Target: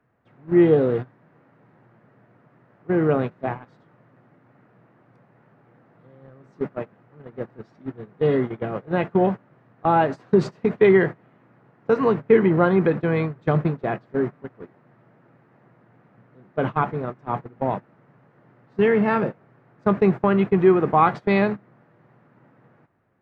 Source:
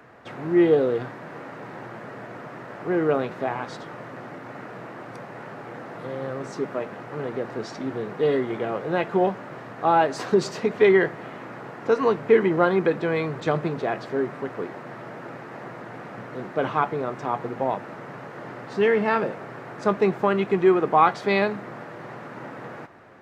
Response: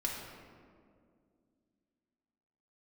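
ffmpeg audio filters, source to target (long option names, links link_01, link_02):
-af "agate=range=-21dB:threshold=-26dB:ratio=16:detection=peak,bass=frequency=250:gain=10,treble=frequency=4000:gain=-11"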